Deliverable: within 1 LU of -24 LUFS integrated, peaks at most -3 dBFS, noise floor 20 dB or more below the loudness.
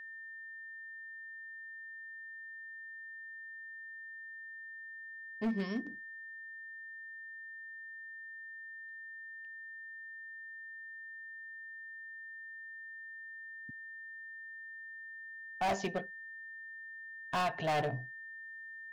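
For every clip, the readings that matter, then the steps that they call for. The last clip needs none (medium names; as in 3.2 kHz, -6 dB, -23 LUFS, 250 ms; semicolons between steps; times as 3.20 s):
clipped samples 0.6%; clipping level -28.5 dBFS; steady tone 1.8 kHz; tone level -45 dBFS; loudness -42.5 LUFS; peak level -28.5 dBFS; loudness target -24.0 LUFS
-> clip repair -28.5 dBFS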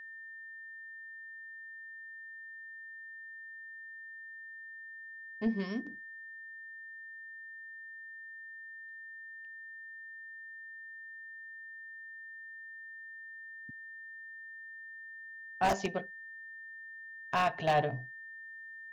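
clipped samples 0.0%; steady tone 1.8 kHz; tone level -45 dBFS
-> band-stop 1.8 kHz, Q 30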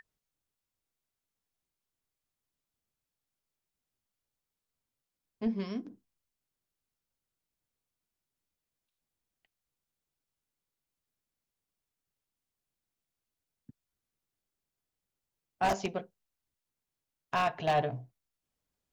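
steady tone not found; loudness -33.0 LUFS; peak level -18.0 dBFS; loudness target -24.0 LUFS
-> trim +9 dB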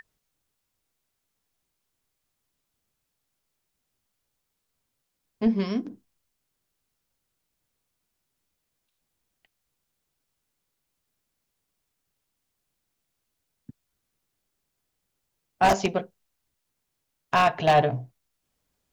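loudness -24.0 LUFS; peak level -9.0 dBFS; noise floor -80 dBFS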